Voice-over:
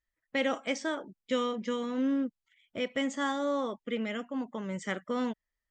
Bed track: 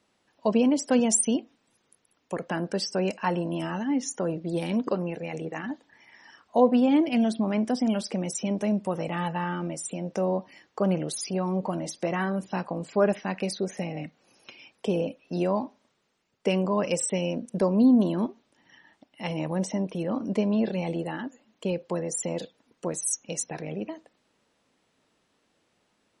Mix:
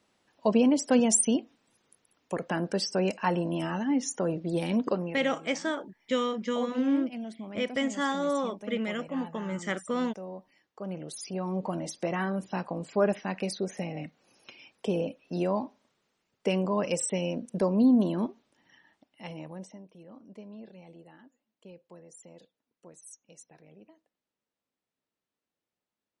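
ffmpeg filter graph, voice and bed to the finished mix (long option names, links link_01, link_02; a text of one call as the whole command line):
ffmpeg -i stem1.wav -i stem2.wav -filter_complex "[0:a]adelay=4800,volume=2dB[link_01];[1:a]volume=11.5dB,afade=type=out:start_time=4.88:duration=0.48:silence=0.199526,afade=type=in:start_time=10.79:duration=0.95:silence=0.251189,afade=type=out:start_time=18.36:duration=1.46:silence=0.11885[link_02];[link_01][link_02]amix=inputs=2:normalize=0" out.wav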